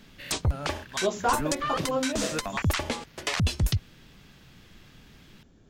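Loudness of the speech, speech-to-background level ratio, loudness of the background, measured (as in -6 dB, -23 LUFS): -30.0 LUFS, -0.5 dB, -29.5 LUFS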